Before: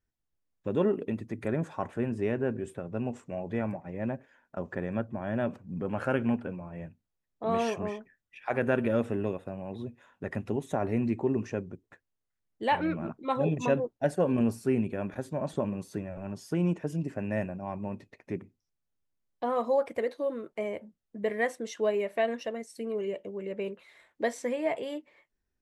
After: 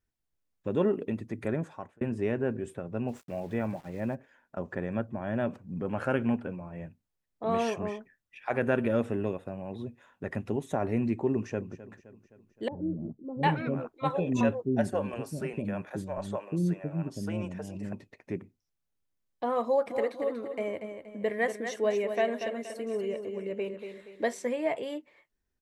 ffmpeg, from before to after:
-filter_complex "[0:a]asplit=3[a][b][c];[a]afade=t=out:st=3.07:d=0.02[d];[b]aeval=exprs='val(0)*gte(abs(val(0)),0.00266)':c=same,afade=t=in:st=3.07:d=0.02,afade=t=out:st=4.14:d=0.02[e];[c]afade=t=in:st=4.14:d=0.02[f];[d][e][f]amix=inputs=3:normalize=0,asplit=2[g][h];[h]afade=t=in:st=11.32:d=0.01,afade=t=out:st=11.74:d=0.01,aecho=0:1:260|520|780|1040|1300:0.16788|0.0923342|0.0507838|0.0279311|0.0153621[i];[g][i]amix=inputs=2:normalize=0,asettb=1/sr,asplit=3[j][k][l];[j]atrim=end=12.684[m];[k]atrim=start=12.68:end=17.93,asetpts=PTS-STARTPTS,afade=t=in:d=0.004:c=qsin,afade=t=out:st=5.246:d=0.004:c=qsin,acrossover=split=440[n][o];[o]adelay=750[p];[n][p]amix=inputs=2:normalize=0,atrim=end_sample=231525[q];[l]atrim=start=17.926[r];[m][q]acrossfade=d=0.004:c1=hsin:c2=qsin[s];[s][r]acrossfade=d=0.004:c1=qsin:c2=hsin,asplit=3[t][u][v];[t]afade=t=out:st=19.86:d=0.02[w];[u]aecho=1:1:237|474|711|948:0.398|0.155|0.0606|0.0236,afade=t=in:st=19.86:d=0.02,afade=t=out:st=24.46:d=0.02[x];[v]afade=t=in:st=24.46:d=0.02[y];[w][x][y]amix=inputs=3:normalize=0,asplit=2[z][aa];[z]atrim=end=2.01,asetpts=PTS-STARTPTS,afade=t=out:st=1.5:d=0.51[ab];[aa]atrim=start=2.01,asetpts=PTS-STARTPTS,afade=t=in:d=0.004:c=hsin[ac];[ab][ac]concat=n=2:v=0:a=1"

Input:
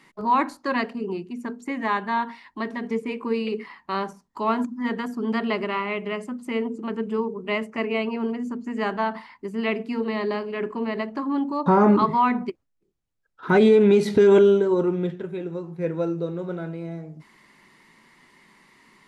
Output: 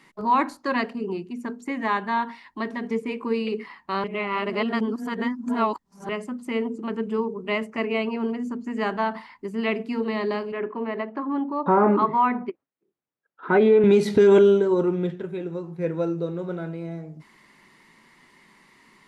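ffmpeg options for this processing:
-filter_complex "[0:a]asettb=1/sr,asplit=3[a][b][c];[a]atrim=end=10.524[d];[b]atrim=start=10.52:end=13.84,asetpts=PTS-STARTPTS,afade=t=in:d=0.004:c=qsin,afade=t=out:st=3.316:d=0.004:c=qsin,highpass=240,lowpass=2.3k[e];[c]atrim=start=13.836[f];[d][e]acrossfade=d=0.004:c1=hsin:c2=qsin[g];[g][f]acrossfade=d=0.004:c1=qsin:c2=hsin,asplit=3[h][i][j];[h]atrim=end=4.042[k];[i]atrim=start=4.038:end=6.092,asetpts=PTS-STARTPTS,areverse[l];[j]atrim=start=6.088[m];[k][l]acrossfade=d=0.004:c1=hsin:c2=hsin[n];[n][m]acrossfade=d=0.004:c1=hsin:c2=hsin"

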